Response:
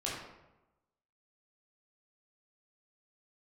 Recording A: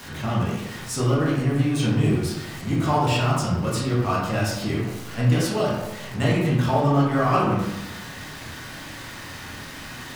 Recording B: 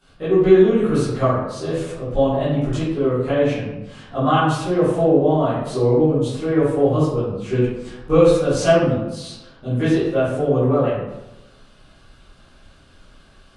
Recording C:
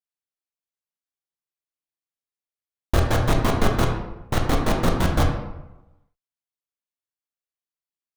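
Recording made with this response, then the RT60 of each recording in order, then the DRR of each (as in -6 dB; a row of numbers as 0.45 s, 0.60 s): A; 1.0 s, 1.0 s, 1.0 s; -6.0 dB, -16.0 dB, 0.5 dB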